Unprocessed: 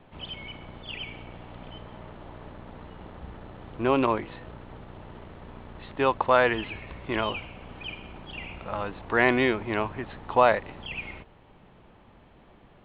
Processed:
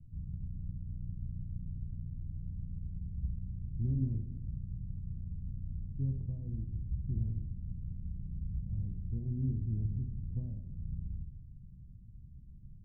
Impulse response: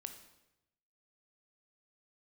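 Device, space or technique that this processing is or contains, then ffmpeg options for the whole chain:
club heard from the street: -filter_complex "[0:a]alimiter=limit=-11dB:level=0:latency=1:release=421,lowpass=f=140:w=0.5412,lowpass=f=140:w=1.3066[a];[1:a]atrim=start_sample=2205[b];[a][b]afir=irnorm=-1:irlink=0,volume=12dB"

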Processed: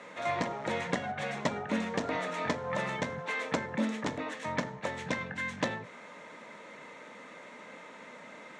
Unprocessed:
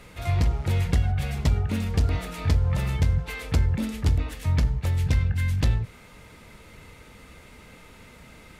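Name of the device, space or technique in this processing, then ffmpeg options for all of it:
television speaker: -af "highpass=f=210:w=0.5412,highpass=f=210:w=1.3066,equalizer=f=380:t=q:w=4:g=-3,equalizer=f=580:t=q:w=4:g=8,equalizer=f=1k:t=q:w=4:g=7,equalizer=f=1.8k:t=q:w=4:g=6,equalizer=f=2.8k:t=q:w=4:g=-4,equalizer=f=4.8k:t=q:w=4:g=-9,lowpass=f=7k:w=0.5412,lowpass=f=7k:w=1.3066"

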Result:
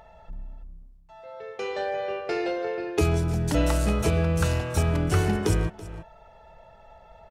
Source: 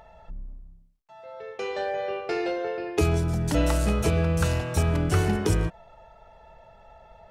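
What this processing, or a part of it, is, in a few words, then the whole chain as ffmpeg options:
ducked delay: -filter_complex "[0:a]asplit=3[a][b][c];[b]adelay=330,volume=-9dB[d];[c]apad=whole_len=336563[e];[d][e]sidechaincompress=threshold=-33dB:ratio=8:attack=7.9:release=479[f];[a][f]amix=inputs=2:normalize=0"

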